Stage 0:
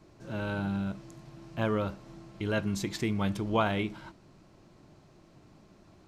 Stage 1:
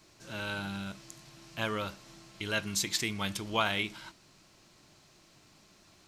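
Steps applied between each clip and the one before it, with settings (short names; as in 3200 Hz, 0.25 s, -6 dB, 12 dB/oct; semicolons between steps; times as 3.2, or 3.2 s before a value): tilt shelf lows -9.5 dB, about 1500 Hz; gain +1.5 dB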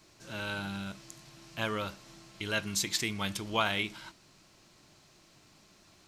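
nothing audible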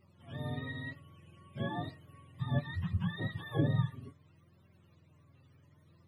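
spectrum mirrored in octaves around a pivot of 610 Hz; flange 0.64 Hz, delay 5 ms, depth 2.7 ms, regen +43%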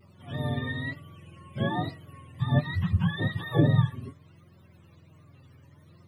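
vibrato 1.2 Hz 56 cents; gain +8.5 dB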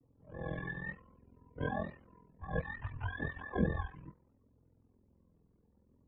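ring modulator 21 Hz; mistuned SSB -99 Hz 200–2800 Hz; low-pass opened by the level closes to 390 Hz, open at -29.5 dBFS; gain -3 dB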